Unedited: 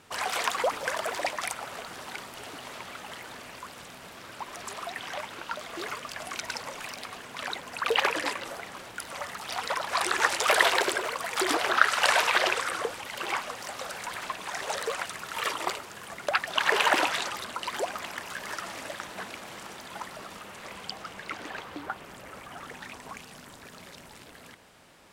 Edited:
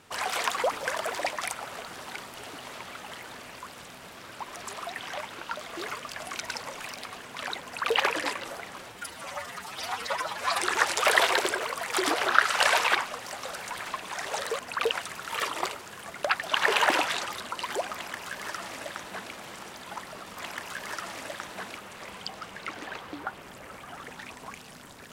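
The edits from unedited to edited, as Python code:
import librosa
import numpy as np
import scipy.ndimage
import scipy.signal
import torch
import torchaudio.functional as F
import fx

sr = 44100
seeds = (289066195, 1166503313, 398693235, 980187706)

y = fx.edit(x, sr, fx.duplicate(start_s=7.64, length_s=0.32, to_s=14.95),
    fx.stretch_span(start_s=8.9, length_s=1.14, factor=1.5),
    fx.cut(start_s=12.38, length_s=0.93),
    fx.duplicate(start_s=17.97, length_s=1.41, to_s=20.41), tone=tone)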